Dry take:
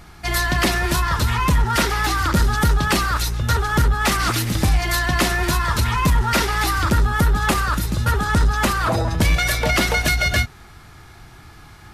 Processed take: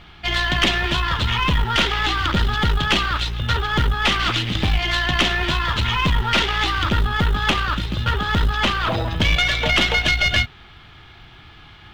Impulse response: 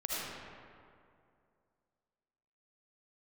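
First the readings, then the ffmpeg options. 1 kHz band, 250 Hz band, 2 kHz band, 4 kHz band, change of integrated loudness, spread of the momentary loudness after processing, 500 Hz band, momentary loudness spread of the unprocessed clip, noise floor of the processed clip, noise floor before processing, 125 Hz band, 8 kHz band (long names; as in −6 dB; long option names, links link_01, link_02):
−1.5 dB, −2.5 dB, +1.0 dB, +5.5 dB, 0.0 dB, 5 LU, −2.5 dB, 3 LU, −45 dBFS, −44 dBFS, −2.5 dB, −9.5 dB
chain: -af "lowpass=frequency=3200:width_type=q:width=4.4,acrusher=bits=9:mode=log:mix=0:aa=0.000001,aeval=exprs='(tanh(2.24*val(0)+0.55)-tanh(0.55))/2.24':channel_layout=same"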